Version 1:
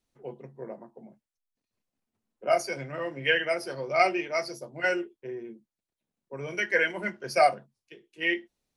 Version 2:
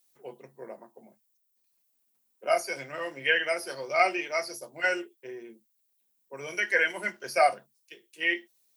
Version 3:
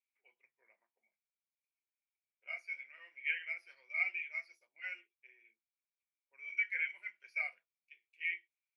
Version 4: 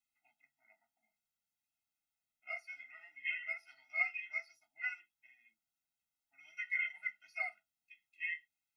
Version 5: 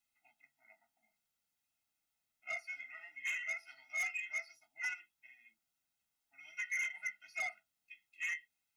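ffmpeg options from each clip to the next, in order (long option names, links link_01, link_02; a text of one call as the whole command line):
ffmpeg -i in.wav -filter_complex "[0:a]aemphasis=mode=production:type=riaa,acrossover=split=2600[link_01][link_02];[link_02]acompressor=threshold=-38dB:ratio=4:attack=1:release=60[link_03];[link_01][link_03]amix=inputs=2:normalize=0" out.wav
ffmpeg -i in.wav -af "bandpass=frequency=2300:width_type=q:width=16:csg=0" out.wav
ffmpeg -i in.wav -af "afftfilt=real='re*eq(mod(floor(b*sr/1024/310),2),0)':imag='im*eq(mod(floor(b*sr/1024/310),2),0)':win_size=1024:overlap=0.75,volume=6dB" out.wav
ffmpeg -i in.wav -af "asoftclip=type=tanh:threshold=-37.5dB,volume=4.5dB" out.wav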